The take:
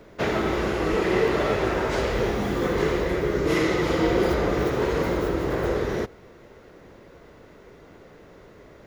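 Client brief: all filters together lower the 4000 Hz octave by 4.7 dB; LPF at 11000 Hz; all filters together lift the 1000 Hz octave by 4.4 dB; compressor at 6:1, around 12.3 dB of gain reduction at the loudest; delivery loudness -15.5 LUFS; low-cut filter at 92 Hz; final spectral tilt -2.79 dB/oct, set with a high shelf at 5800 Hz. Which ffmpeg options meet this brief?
-af "highpass=92,lowpass=11k,equalizer=f=1k:t=o:g=6,equalizer=f=4k:t=o:g=-8,highshelf=f=5.8k:g=3.5,acompressor=threshold=-30dB:ratio=6,volume=17.5dB"

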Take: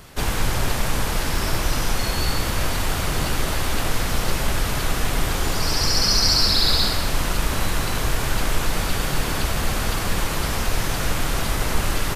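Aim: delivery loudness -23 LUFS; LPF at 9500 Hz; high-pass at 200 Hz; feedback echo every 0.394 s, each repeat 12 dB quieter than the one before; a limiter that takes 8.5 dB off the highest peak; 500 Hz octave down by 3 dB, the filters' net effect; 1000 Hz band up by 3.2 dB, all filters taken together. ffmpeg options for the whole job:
-af "highpass=200,lowpass=9.5k,equalizer=f=500:t=o:g=-5.5,equalizer=f=1k:t=o:g=5.5,alimiter=limit=-15.5dB:level=0:latency=1,aecho=1:1:394|788|1182:0.251|0.0628|0.0157,volume=1.5dB"

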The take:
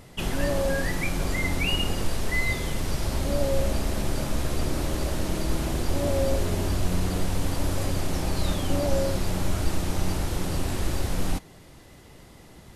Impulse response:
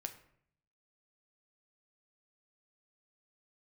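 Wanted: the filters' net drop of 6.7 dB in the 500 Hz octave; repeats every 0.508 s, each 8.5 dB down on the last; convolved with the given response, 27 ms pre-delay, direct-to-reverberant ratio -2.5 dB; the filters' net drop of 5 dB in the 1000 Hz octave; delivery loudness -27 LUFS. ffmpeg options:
-filter_complex "[0:a]equalizer=f=500:t=o:g=-7,equalizer=f=1k:t=o:g=-4,aecho=1:1:508|1016|1524|2032:0.376|0.143|0.0543|0.0206,asplit=2[a][b];[1:a]atrim=start_sample=2205,adelay=27[c];[b][c]afir=irnorm=-1:irlink=0,volume=5dB[d];[a][d]amix=inputs=2:normalize=0,volume=-2.5dB"

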